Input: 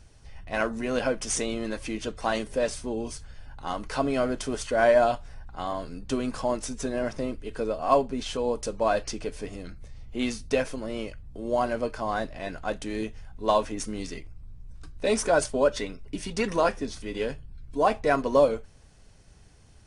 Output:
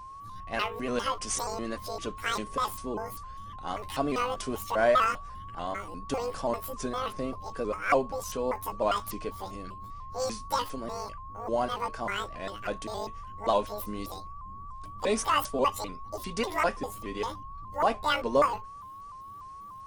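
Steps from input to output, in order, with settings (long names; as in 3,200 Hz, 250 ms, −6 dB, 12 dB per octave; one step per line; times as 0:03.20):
pitch shifter gated in a rhythm +12 semitones, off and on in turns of 198 ms
steady tone 1,100 Hz −39 dBFS
pitch modulation by a square or saw wave saw up 3.4 Hz, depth 100 cents
level −3 dB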